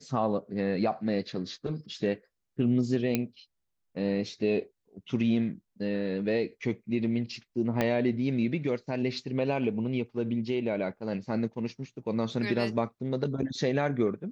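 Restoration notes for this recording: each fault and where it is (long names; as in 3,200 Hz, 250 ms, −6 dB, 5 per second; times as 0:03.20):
0:03.15: click −12 dBFS
0:07.81: click −13 dBFS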